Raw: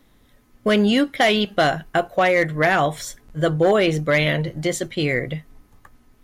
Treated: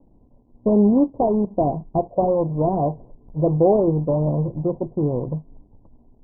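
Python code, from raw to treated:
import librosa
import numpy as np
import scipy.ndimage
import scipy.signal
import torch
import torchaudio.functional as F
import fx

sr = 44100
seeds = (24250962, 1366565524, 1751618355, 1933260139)

p1 = scipy.ndimage.median_filter(x, 41, mode='constant')
p2 = fx.quant_companded(p1, sr, bits=4)
p3 = p1 + (p2 * 10.0 ** (-8.5 / 20.0))
y = scipy.signal.sosfilt(scipy.signal.cheby1(6, 1.0, 1000.0, 'lowpass', fs=sr, output='sos'), p3)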